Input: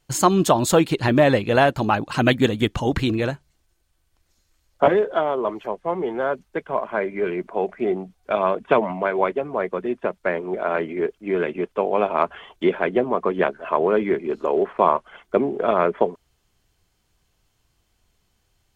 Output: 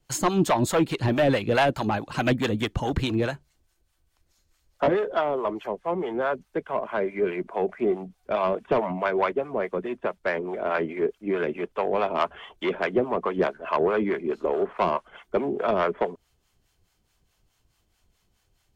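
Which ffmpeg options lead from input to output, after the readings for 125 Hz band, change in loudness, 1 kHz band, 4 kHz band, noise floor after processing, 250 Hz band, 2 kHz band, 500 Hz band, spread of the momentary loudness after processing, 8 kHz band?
−3.5 dB, −4.0 dB, −4.5 dB, −4.0 dB, −71 dBFS, −4.0 dB, −3.5 dB, −4.0 dB, 8 LU, can't be measured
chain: -filter_complex "[0:a]acrossover=split=390|1600|2000[link_01][link_02][link_03][link_04];[link_04]alimiter=limit=-16.5dB:level=0:latency=1:release=334[link_05];[link_01][link_02][link_03][link_05]amix=inputs=4:normalize=0,asoftclip=type=tanh:threshold=-12.5dB,acrossover=split=620[link_06][link_07];[link_06]aeval=exprs='val(0)*(1-0.7/2+0.7/2*cos(2*PI*4.7*n/s))':channel_layout=same[link_08];[link_07]aeval=exprs='val(0)*(1-0.7/2-0.7/2*cos(2*PI*4.7*n/s))':channel_layout=same[link_09];[link_08][link_09]amix=inputs=2:normalize=0,volume=1.5dB"

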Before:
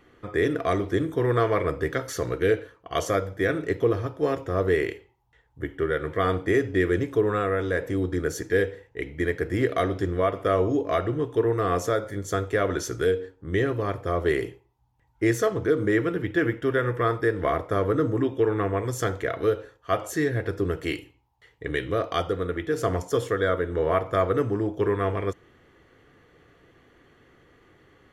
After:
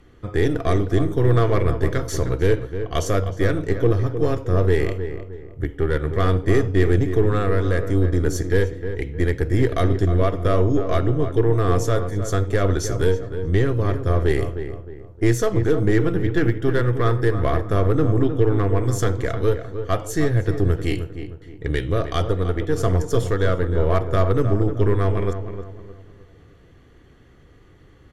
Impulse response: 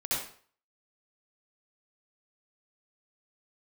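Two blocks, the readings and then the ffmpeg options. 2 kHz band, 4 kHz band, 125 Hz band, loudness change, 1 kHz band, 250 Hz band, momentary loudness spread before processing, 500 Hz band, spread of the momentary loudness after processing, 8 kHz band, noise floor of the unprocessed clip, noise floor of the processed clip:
−0.5 dB, +3.0 dB, +11.0 dB, +4.5 dB, +0.5 dB, +4.5 dB, 6 LU, +2.5 dB, 8 LU, +4.5 dB, −63 dBFS, −49 dBFS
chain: -filter_complex "[0:a]aeval=exprs='0.282*(cos(1*acos(clip(val(0)/0.282,-1,1)))-cos(1*PI/2))+0.0126*(cos(6*acos(clip(val(0)/0.282,-1,1)))-cos(6*PI/2))':channel_layout=same,aemphasis=mode=reproduction:type=bsi,asplit=2[link_01][link_02];[link_02]adelay=309,lowpass=frequency=1700:poles=1,volume=-9dB,asplit=2[link_03][link_04];[link_04]adelay=309,lowpass=frequency=1700:poles=1,volume=0.38,asplit=2[link_05][link_06];[link_06]adelay=309,lowpass=frequency=1700:poles=1,volume=0.38,asplit=2[link_07][link_08];[link_08]adelay=309,lowpass=frequency=1700:poles=1,volume=0.38[link_09];[link_01][link_03][link_05][link_07][link_09]amix=inputs=5:normalize=0,acrossover=split=2700[link_10][link_11];[link_11]crystalizer=i=4:c=0[link_12];[link_10][link_12]amix=inputs=2:normalize=0"

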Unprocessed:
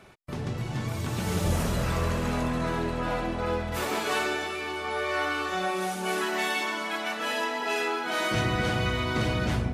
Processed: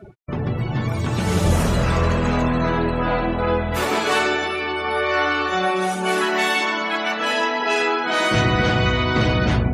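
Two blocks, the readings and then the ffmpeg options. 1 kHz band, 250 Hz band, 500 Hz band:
+8.5 dB, +8.5 dB, +8.5 dB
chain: -af "afftdn=noise_reduction=29:noise_floor=-45,areverse,acompressor=mode=upward:threshold=-30dB:ratio=2.5,areverse,volume=8.5dB"

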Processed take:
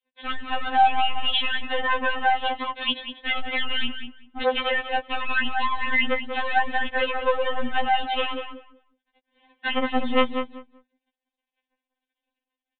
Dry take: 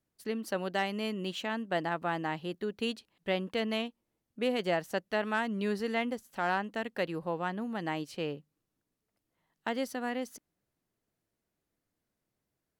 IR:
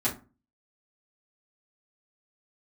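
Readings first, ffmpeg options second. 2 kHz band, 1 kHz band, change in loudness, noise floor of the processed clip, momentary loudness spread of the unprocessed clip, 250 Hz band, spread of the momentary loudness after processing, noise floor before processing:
+12.0 dB, +13.0 dB, +9.5 dB, below −85 dBFS, 6 LU, +1.5 dB, 8 LU, below −85 dBFS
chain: -filter_complex "[0:a]highpass=frequency=260:poles=1,apsyclip=31dB,acompressor=threshold=-20dB:ratio=3,aresample=16000,aeval=exprs='sgn(val(0))*max(abs(val(0))-0.00335,0)':channel_layout=same,aresample=44100,bandreject=frequency=1300:width=7.1,acrossover=split=720|2400[link_01][link_02][link_03];[link_01]aeval=exprs='0.0841*(abs(mod(val(0)/0.0841+3,4)-2)-1)':channel_layout=same[link_04];[link_04][link_02][link_03]amix=inputs=3:normalize=0,asplit=2[link_05][link_06];[link_06]adelay=191,lowpass=frequency=2300:poles=1,volume=-7dB,asplit=2[link_07][link_08];[link_08]adelay=191,lowpass=frequency=2300:poles=1,volume=0.19,asplit=2[link_09][link_10];[link_10]adelay=191,lowpass=frequency=2300:poles=1,volume=0.19[link_11];[link_05][link_07][link_09][link_11]amix=inputs=4:normalize=0,aresample=8000,aresample=44100,afftfilt=real='re*3.46*eq(mod(b,12),0)':imag='im*3.46*eq(mod(b,12),0)':win_size=2048:overlap=0.75"

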